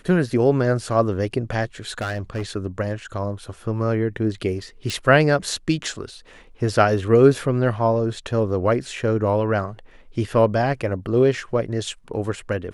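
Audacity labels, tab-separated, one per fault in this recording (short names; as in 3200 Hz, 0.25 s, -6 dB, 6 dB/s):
1.890000	2.420000	clipped -21.5 dBFS
4.900000	4.900000	pop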